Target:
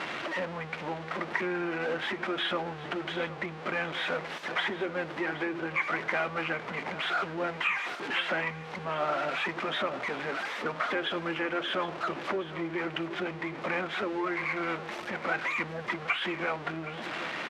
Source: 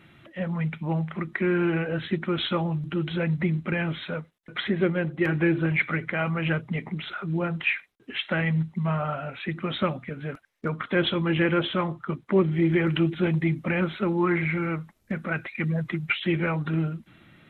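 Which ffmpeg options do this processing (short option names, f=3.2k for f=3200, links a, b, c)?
-filter_complex "[0:a]aeval=exprs='val(0)+0.5*0.0473*sgn(val(0))':c=same,acompressor=threshold=-24dB:ratio=10,asplit=2[a][b];[b]asetrate=22050,aresample=44100,atempo=2,volume=-8dB[c];[a][c]amix=inputs=2:normalize=0,highpass=430,lowpass=2.9k,aecho=1:1:770:0.188"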